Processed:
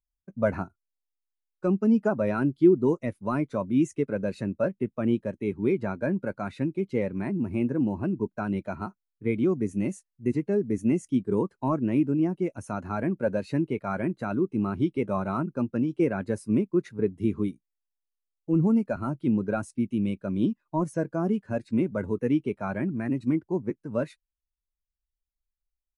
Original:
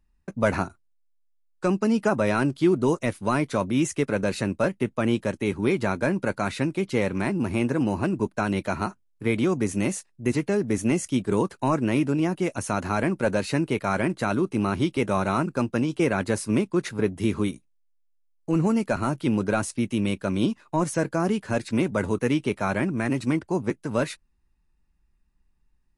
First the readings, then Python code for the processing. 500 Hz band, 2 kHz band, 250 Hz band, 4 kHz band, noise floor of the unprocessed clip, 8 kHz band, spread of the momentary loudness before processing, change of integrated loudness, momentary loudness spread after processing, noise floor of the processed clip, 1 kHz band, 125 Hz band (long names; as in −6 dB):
−2.5 dB, −9.0 dB, −1.0 dB, below −10 dB, −66 dBFS, below −10 dB, 5 LU, −2.0 dB, 7 LU, below −85 dBFS, −6.5 dB, −3.0 dB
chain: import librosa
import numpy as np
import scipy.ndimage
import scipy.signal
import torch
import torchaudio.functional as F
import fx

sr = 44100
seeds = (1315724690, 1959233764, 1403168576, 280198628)

y = fx.spectral_expand(x, sr, expansion=1.5)
y = y * librosa.db_to_amplitude(1.0)